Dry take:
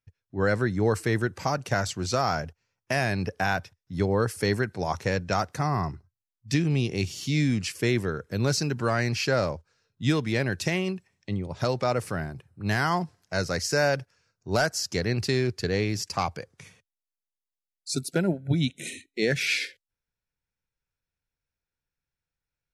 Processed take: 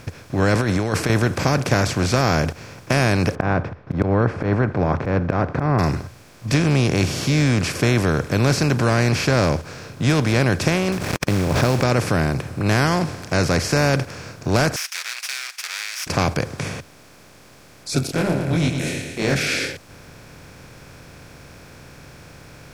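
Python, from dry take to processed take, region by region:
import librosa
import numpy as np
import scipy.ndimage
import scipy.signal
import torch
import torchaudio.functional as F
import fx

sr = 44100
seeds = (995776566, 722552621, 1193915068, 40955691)

y = fx.chain(x, sr, fx.low_shelf(hz=150.0, db=-8.5),
    fx.over_compress(threshold_db=-32.0, ratio=-1.0), at=(0.55, 1.1))
y = fx.chain(y, sr, fx.lowpass(hz=1300.0, slope=24),
    fx.auto_swell(attack_ms=105.0), at=(3.35, 5.79))
y = fx.chain(y, sr, fx.high_shelf(hz=3200.0, db=-9.0),
    fx.quant_companded(bits=6),
    fx.pre_swell(db_per_s=71.0), at=(10.92, 11.83))
y = fx.chain(y, sr, fx.lower_of_two(delay_ms=0.34),
    fx.bessel_highpass(hz=3000.0, order=8),
    fx.comb(ms=7.3, depth=0.55), at=(14.76, 16.07))
y = fx.chain(y, sr, fx.transient(attack_db=-7, sustain_db=-2),
    fx.echo_feedback(ms=112, feedback_pct=34, wet_db=-14.5),
    fx.detune_double(cents=57), at=(18.07, 19.36))
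y = fx.bin_compress(y, sr, power=0.4)
y = fx.low_shelf(y, sr, hz=180.0, db=9.0)
y = y * 10.0 ** (-1.0 / 20.0)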